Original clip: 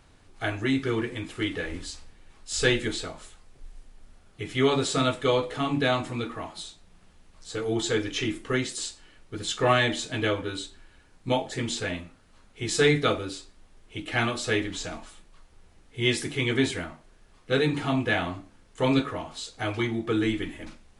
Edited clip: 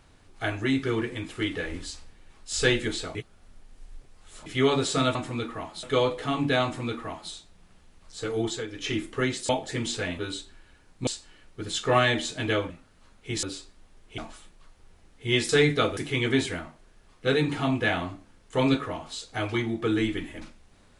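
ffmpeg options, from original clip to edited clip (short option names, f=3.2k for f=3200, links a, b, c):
-filter_complex "[0:a]asplit=15[a][b][c][d][e][f][g][h][i][j][k][l][m][n][o];[a]atrim=end=3.152[p];[b]atrim=start=3.148:end=4.462,asetpts=PTS-STARTPTS,areverse[q];[c]atrim=start=4.458:end=5.152[r];[d]atrim=start=5.958:end=6.642[s];[e]atrim=start=5.148:end=7.98,asetpts=PTS-STARTPTS,afade=t=out:st=2.572:d=0.26:silence=0.281838[t];[f]atrim=start=7.98:end=8,asetpts=PTS-STARTPTS,volume=-11dB[u];[g]atrim=start=8:end=8.812,asetpts=PTS-STARTPTS,afade=t=in:d=0.26:silence=0.281838[v];[h]atrim=start=11.318:end=12.022[w];[i]atrim=start=10.438:end=11.322[x];[j]atrim=start=8.808:end=10.442[y];[k]atrim=start=12.018:end=12.752[z];[l]atrim=start=13.228:end=13.982[aa];[m]atrim=start=14.908:end=16.222[ab];[n]atrim=start=12.748:end=13.232[ac];[o]atrim=start=16.218[ad];[p][q]acrossfade=d=0.004:c1=hsin:c2=hsin[ae];[ae][r]acrossfade=d=0.004:c1=hsin:c2=hsin[af];[af][s]acrossfade=d=0.004:c1=hsin:c2=hsin[ag];[t][u][v]concat=n=3:v=0:a=1[ah];[ag][ah]acrossfade=d=0.004:c1=hsin:c2=hsin[ai];[ai][w]acrossfade=d=0.004:c1=hsin:c2=hsin[aj];[aj][x]acrossfade=d=0.004:c1=hsin:c2=hsin[ak];[ak][y]acrossfade=d=0.004:c1=hsin:c2=hsin[al];[al][z]acrossfade=d=0.004:c1=hsin:c2=hsin[am];[am][aa]acrossfade=d=0.004:c1=hsin:c2=hsin[an];[an][ab]acrossfade=d=0.004:c1=hsin:c2=hsin[ao];[ao][ac]acrossfade=d=0.004:c1=hsin:c2=hsin[ap];[ap][ad]acrossfade=d=0.004:c1=hsin:c2=hsin"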